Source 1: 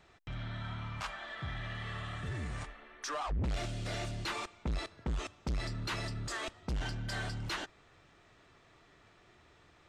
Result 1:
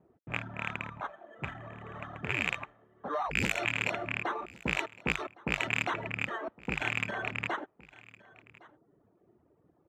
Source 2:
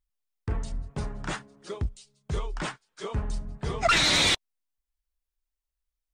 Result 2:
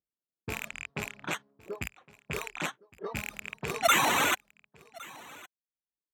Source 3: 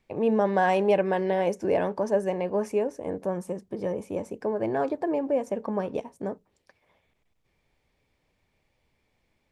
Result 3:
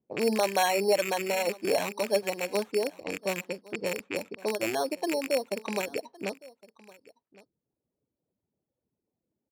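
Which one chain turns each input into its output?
loose part that buzzes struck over −36 dBFS, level −20 dBFS
decimation without filtering 9×
low-pass that shuts in the quiet parts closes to 380 Hz, open at −25 dBFS
Bessel high-pass filter 200 Hz, order 2
reverb reduction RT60 1.4 s
single-tap delay 1,112 ms −22 dB
normalise the peak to −12 dBFS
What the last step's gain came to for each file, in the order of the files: +7.5, −0.5, −1.0 decibels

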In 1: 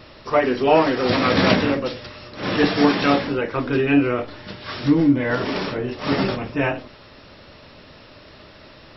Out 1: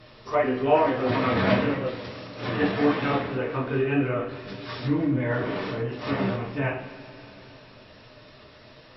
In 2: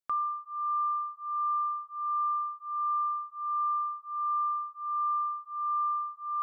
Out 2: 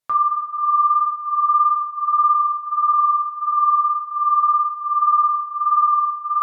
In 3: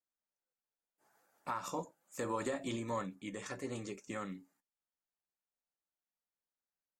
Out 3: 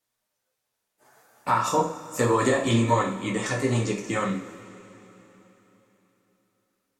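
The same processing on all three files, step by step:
flanger 1.7 Hz, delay 6.1 ms, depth 4.5 ms, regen −30%
coupled-rooms reverb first 0.4 s, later 3.8 s, from −18 dB, DRR 0.5 dB
treble cut that deepens with the level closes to 2,700 Hz, closed at −20 dBFS
normalise the peak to −9 dBFS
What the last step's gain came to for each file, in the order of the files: −4.0, +12.0, +17.0 decibels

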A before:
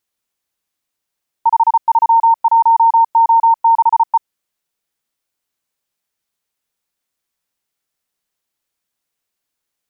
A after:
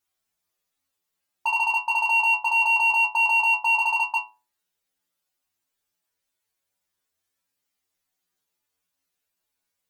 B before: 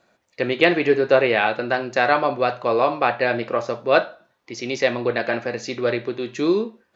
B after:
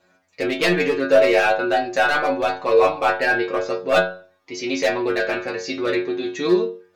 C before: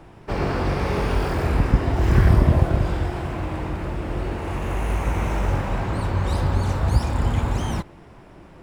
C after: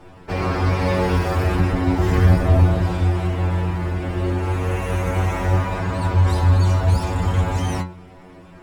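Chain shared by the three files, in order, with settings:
gain into a clipping stage and back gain 12.5 dB
stiff-string resonator 89 Hz, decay 0.39 s, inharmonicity 0.002
loudness normalisation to −20 LKFS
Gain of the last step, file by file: +7.5, +12.0, +13.0 decibels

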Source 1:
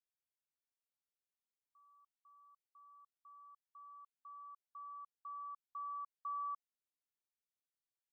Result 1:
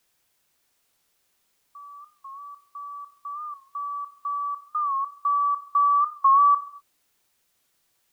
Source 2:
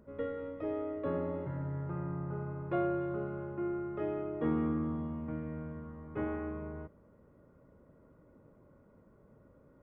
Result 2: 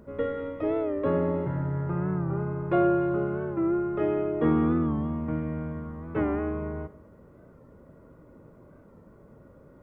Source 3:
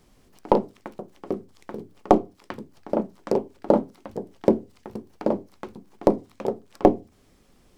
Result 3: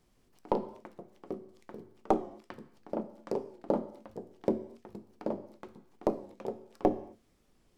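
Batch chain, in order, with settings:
reverb whose tail is shaped and stops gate 280 ms falling, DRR 11.5 dB
wow of a warped record 45 rpm, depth 100 cents
normalise the peak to −12 dBFS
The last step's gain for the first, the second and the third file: +25.0, +8.5, −11.0 decibels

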